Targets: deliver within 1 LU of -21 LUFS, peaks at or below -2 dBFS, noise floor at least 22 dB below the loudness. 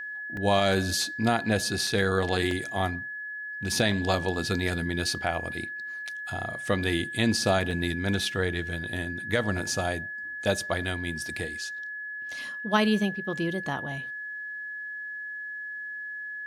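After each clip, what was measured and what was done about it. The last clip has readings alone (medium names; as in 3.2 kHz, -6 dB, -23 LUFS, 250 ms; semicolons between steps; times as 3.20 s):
dropouts 4; longest dropout 2.4 ms; steady tone 1.7 kHz; tone level -34 dBFS; loudness -28.5 LUFS; peak level -10.5 dBFS; loudness target -21.0 LUFS
-> interpolate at 0.37/1.87/2.51/7.71 s, 2.4 ms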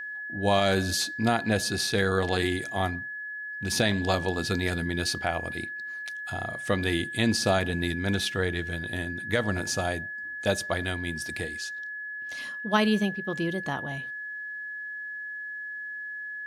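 dropouts 0; steady tone 1.7 kHz; tone level -34 dBFS
-> band-stop 1.7 kHz, Q 30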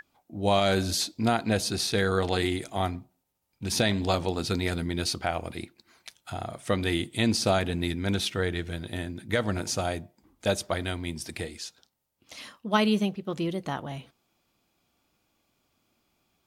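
steady tone not found; loudness -28.5 LUFS; peak level -11.0 dBFS; loudness target -21.0 LUFS
-> trim +7.5 dB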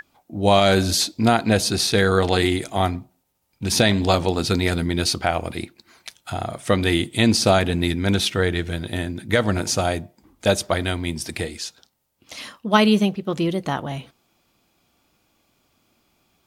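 loudness -21.0 LUFS; peak level -3.5 dBFS; noise floor -67 dBFS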